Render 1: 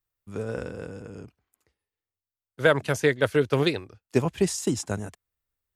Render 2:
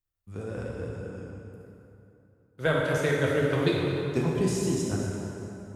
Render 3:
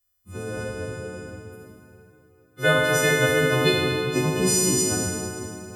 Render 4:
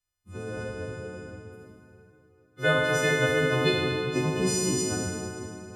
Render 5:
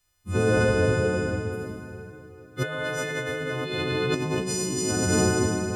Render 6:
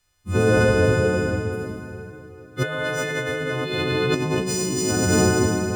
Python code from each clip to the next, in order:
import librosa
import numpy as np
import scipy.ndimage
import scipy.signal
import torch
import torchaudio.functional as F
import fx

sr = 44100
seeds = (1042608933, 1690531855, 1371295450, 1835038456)

y1 = fx.low_shelf(x, sr, hz=140.0, db=8.0)
y1 = fx.rev_plate(y1, sr, seeds[0], rt60_s=3.1, hf_ratio=0.65, predelay_ms=0, drr_db=-3.5)
y1 = y1 * 10.0 ** (-8.0 / 20.0)
y2 = fx.freq_snap(y1, sr, grid_st=3)
y2 = fx.echo_tape(y2, sr, ms=401, feedback_pct=59, wet_db=-19.0, lp_hz=3900.0, drive_db=10.0, wow_cents=14)
y2 = y2 * 10.0 ** (4.0 / 20.0)
y3 = fx.air_absorb(y2, sr, metres=53.0)
y3 = y3 * 10.0 ** (-3.5 / 20.0)
y4 = fx.over_compress(y3, sr, threshold_db=-34.0, ratio=-1.0)
y4 = y4 * 10.0 ** (8.5 / 20.0)
y5 = scipy.ndimage.median_filter(y4, 3, mode='constant')
y5 = y5 * 10.0 ** (4.0 / 20.0)